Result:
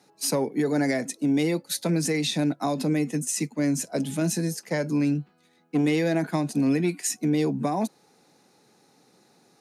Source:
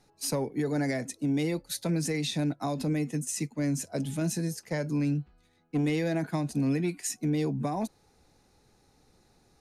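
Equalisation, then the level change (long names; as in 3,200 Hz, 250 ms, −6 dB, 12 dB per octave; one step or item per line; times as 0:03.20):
high-pass filter 160 Hz 24 dB per octave
+5.5 dB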